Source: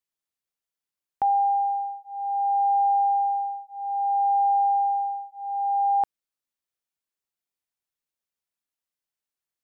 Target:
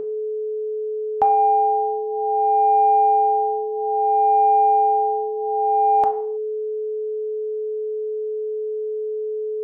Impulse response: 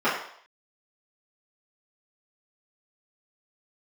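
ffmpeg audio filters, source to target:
-filter_complex "[0:a]acontrast=24,aeval=exprs='val(0)+0.0501*sin(2*PI*430*n/s)':c=same,asplit=2[a][b];[1:a]atrim=start_sample=2205,afade=t=out:st=0.39:d=0.01,atrim=end_sample=17640[c];[b][c]afir=irnorm=-1:irlink=0,volume=-21.5dB[d];[a][d]amix=inputs=2:normalize=0,volume=2dB"

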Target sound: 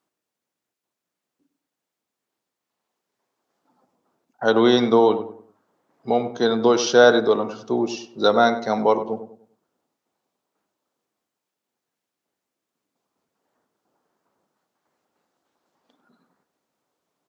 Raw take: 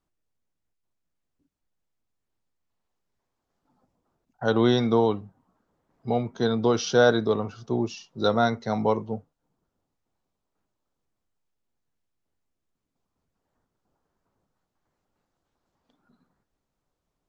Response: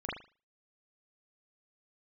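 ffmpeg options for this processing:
-filter_complex "[0:a]highpass=260,asplit=2[a][b];[b]adelay=98,lowpass=f=1.3k:p=1,volume=-10dB,asplit=2[c][d];[d]adelay=98,lowpass=f=1.3k:p=1,volume=0.36,asplit=2[e][f];[f]adelay=98,lowpass=f=1.3k:p=1,volume=0.36,asplit=2[g][h];[h]adelay=98,lowpass=f=1.3k:p=1,volume=0.36[i];[c][e][g][i]amix=inputs=4:normalize=0[j];[a][j]amix=inputs=2:normalize=0,volume=6dB"

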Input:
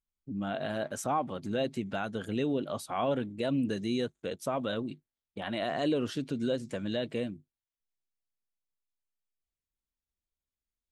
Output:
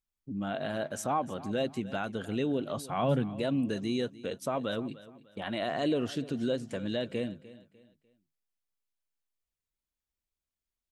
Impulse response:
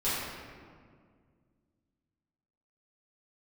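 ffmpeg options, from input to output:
-filter_complex "[0:a]asettb=1/sr,asplit=3[a][b][c];[a]atrim=end=2.774[d];[b]atrim=start=2.77:end=3.4,asetpts=PTS-STARTPTS,afade=t=in:d=0.004:c=qsin,afade=t=out:st=0.626:d=0.004:c=qsin,equalizer=f=150:w=1.8:g=12[e];[c]atrim=start=3.396[f];[d][e]acrossfade=d=0.004:c1=hsin:c2=qsin[g];[g][f]acrossfade=d=0.004:c1=qsin:c2=hsin,asplit=2[h][i];[i]aecho=0:1:299|598|897:0.126|0.0428|0.0146[j];[h][j]amix=inputs=2:normalize=0"

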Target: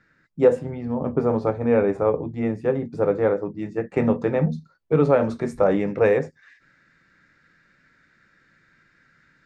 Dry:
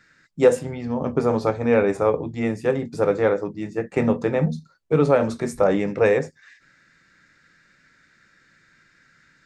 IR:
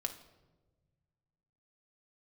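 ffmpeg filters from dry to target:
-af "asetnsamples=n=441:p=0,asendcmd='3.59 lowpass f 2200',lowpass=f=1.1k:p=1"

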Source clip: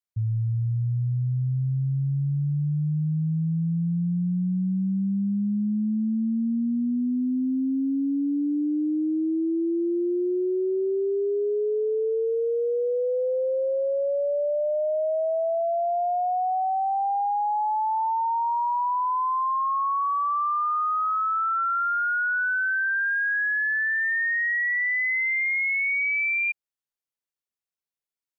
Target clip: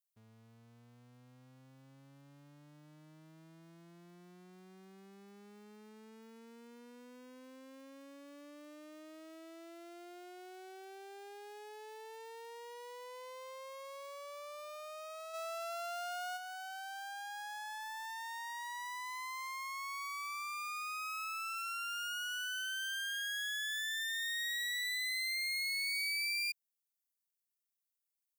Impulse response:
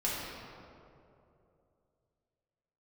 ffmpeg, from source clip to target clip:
-filter_complex "[0:a]aeval=exprs='clip(val(0),-1,0.00794)':c=same,asplit=3[a][b][c];[a]afade=t=out:st=15.33:d=0.02[d];[b]acontrast=29,afade=t=in:st=15.33:d=0.02,afade=t=out:st=16.36:d=0.02[e];[c]afade=t=in:st=16.36:d=0.02[f];[d][e][f]amix=inputs=3:normalize=0,aderivative,volume=1dB"

